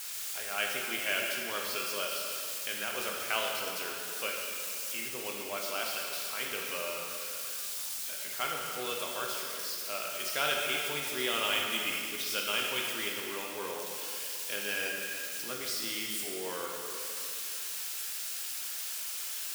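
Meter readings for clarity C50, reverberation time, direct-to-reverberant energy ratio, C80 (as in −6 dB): 0.5 dB, 2.5 s, −1.5 dB, 2.0 dB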